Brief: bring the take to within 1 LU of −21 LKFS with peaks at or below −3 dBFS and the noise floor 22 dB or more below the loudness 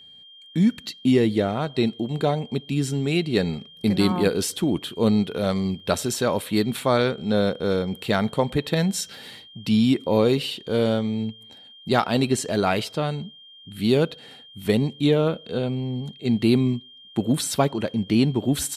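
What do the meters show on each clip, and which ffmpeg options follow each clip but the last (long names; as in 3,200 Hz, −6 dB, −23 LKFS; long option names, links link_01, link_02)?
interfering tone 3,200 Hz; level of the tone −45 dBFS; integrated loudness −23.5 LKFS; sample peak −6.5 dBFS; target loudness −21.0 LKFS
→ -af "bandreject=frequency=3200:width=30"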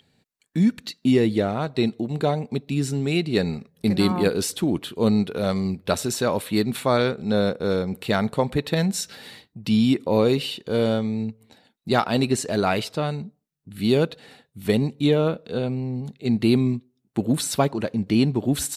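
interfering tone none found; integrated loudness −23.5 LKFS; sample peak −6.0 dBFS; target loudness −21.0 LKFS
→ -af "volume=2.5dB"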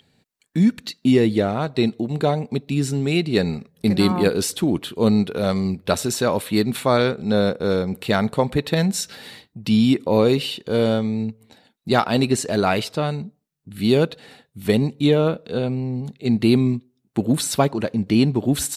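integrated loudness −21.0 LKFS; sample peak −3.5 dBFS; background noise floor −70 dBFS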